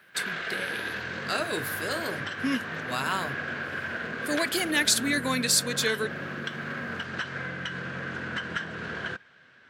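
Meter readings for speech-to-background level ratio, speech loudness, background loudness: 5.5 dB, -28.0 LUFS, -33.5 LUFS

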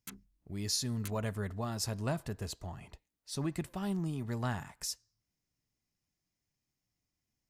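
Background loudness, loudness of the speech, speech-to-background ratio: -51.0 LUFS, -37.0 LUFS, 14.0 dB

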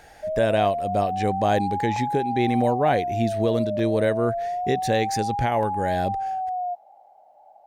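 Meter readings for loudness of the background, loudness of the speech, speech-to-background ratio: -28.0 LUFS, -25.0 LUFS, 3.0 dB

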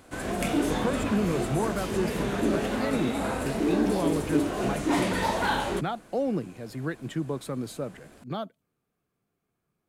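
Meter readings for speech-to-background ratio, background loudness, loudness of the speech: -4.0 dB, -28.5 LUFS, -32.5 LUFS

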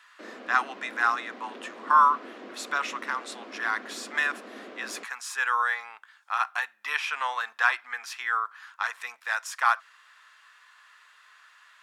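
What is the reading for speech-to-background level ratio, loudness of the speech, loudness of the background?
17.0 dB, -27.5 LUFS, -44.5 LUFS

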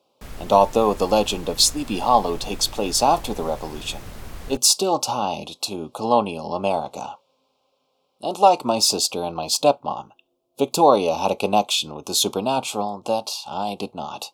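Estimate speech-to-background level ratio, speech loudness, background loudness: 19.0 dB, -21.0 LUFS, -40.0 LUFS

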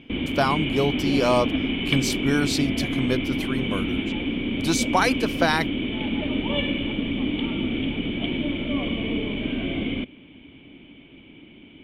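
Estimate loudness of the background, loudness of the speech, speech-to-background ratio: -26.0 LUFS, -25.0 LUFS, 1.0 dB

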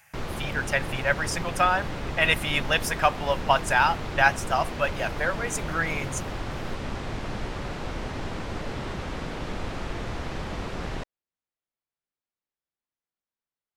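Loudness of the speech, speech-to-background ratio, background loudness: -25.5 LUFS, 8.5 dB, -34.0 LUFS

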